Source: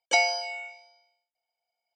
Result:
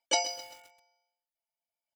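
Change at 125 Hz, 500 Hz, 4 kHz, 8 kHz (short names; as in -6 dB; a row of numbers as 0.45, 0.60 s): n/a, -6.0 dB, -2.5 dB, +1.5 dB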